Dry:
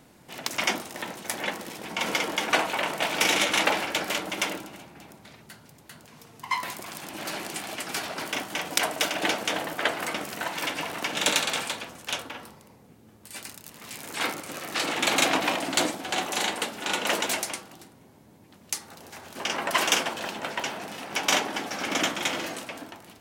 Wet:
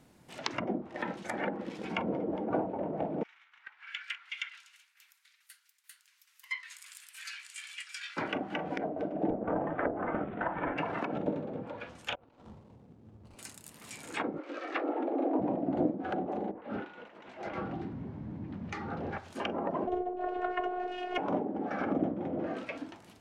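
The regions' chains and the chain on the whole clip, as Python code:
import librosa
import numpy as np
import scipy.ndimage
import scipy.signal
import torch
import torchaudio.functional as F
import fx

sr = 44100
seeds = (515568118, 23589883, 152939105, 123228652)

y = fx.chain(x, sr, fx.cheby2_highpass(hz=600.0, order=4, stop_db=50),
    fx.tremolo_shape(shape='saw_down', hz=2.3, depth_pct=55), at=(3.23, 8.17))
y = fx.chain(y, sr, fx.median_filter(points=15),
    fx.steep_lowpass(hz=3500.0, slope=72), at=(9.3, 10.78))
y = fx.chain(y, sr, fx.median_filter(points=25),
    fx.peak_eq(hz=13000.0, db=-14.5, octaves=0.43),
    fx.over_compress(threshold_db=-49.0, ratio=-0.5), at=(12.15, 13.39))
y = fx.chain(y, sr, fx.steep_highpass(hz=260.0, slope=48),
    fx.air_absorb(metres=120.0), at=(14.38, 15.39))
y = fx.chain(y, sr, fx.law_mismatch(coded='mu'),
    fx.lowpass(hz=2000.0, slope=12),
    fx.over_compress(threshold_db=-40.0, ratio=-1.0), at=(16.51, 19.18))
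y = fx.chain(y, sr, fx.robotise(hz=361.0),
    fx.small_body(hz=(430.0, 640.0, 2700.0), ring_ms=30, db=9),
    fx.doppler_dist(depth_ms=0.45), at=(19.87, 21.18))
y = fx.env_lowpass_down(y, sr, base_hz=520.0, full_db=-25.0)
y = fx.noise_reduce_blind(y, sr, reduce_db=8)
y = fx.low_shelf(y, sr, hz=300.0, db=5.0)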